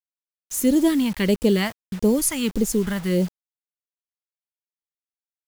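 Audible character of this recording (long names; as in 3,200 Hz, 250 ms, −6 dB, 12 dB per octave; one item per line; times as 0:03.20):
phaser sweep stages 2, 1.6 Hz, lowest notch 390–1,600 Hz
a quantiser's noise floor 8 bits, dither none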